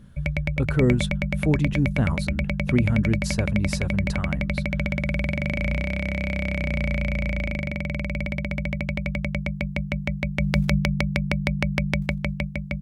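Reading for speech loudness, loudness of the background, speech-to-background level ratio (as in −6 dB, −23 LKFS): −26.0 LKFS, −26.5 LKFS, 0.5 dB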